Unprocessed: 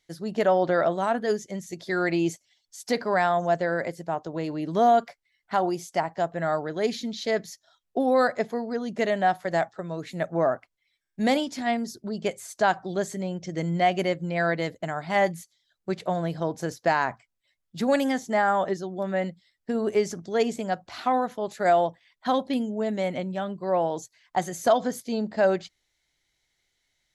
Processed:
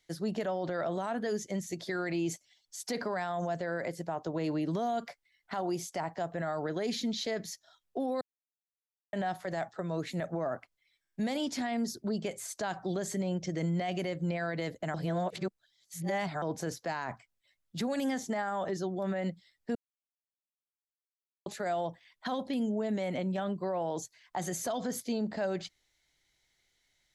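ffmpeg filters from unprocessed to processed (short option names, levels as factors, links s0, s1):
-filter_complex "[0:a]asplit=7[s0][s1][s2][s3][s4][s5][s6];[s0]atrim=end=8.21,asetpts=PTS-STARTPTS,afade=t=out:st=8.206:d=0.004:c=hsin[s7];[s1]atrim=start=8.21:end=9.13,asetpts=PTS-STARTPTS,volume=0[s8];[s2]atrim=start=9.13:end=14.942,asetpts=PTS-STARTPTS,afade=t=in:d=0.004:c=hsin[s9];[s3]atrim=start=14.938:end=16.422,asetpts=PTS-STARTPTS,areverse[s10];[s4]atrim=start=16.418:end=19.75,asetpts=PTS-STARTPTS,afade=t=out:st=3.328:d=0.004:c=hsin[s11];[s5]atrim=start=19.75:end=21.46,asetpts=PTS-STARTPTS,volume=0[s12];[s6]atrim=start=21.46,asetpts=PTS-STARTPTS,afade=t=in:d=0.004:c=hsin[s13];[s7][s8][s9]concat=n=3:v=0:a=1[s14];[s14][s10]acrossfade=d=0.004:c1=hsin:c2=hsin[s15];[s11][s12][s13]concat=n=3:v=0:a=1[s16];[s15][s16]acrossfade=d=0.004:c1=hsin:c2=hsin,acrossover=split=250|3000[s17][s18][s19];[s18]acompressor=threshold=0.0708:ratio=6[s20];[s17][s20][s19]amix=inputs=3:normalize=0,alimiter=level_in=1.12:limit=0.0631:level=0:latency=1:release=43,volume=0.891"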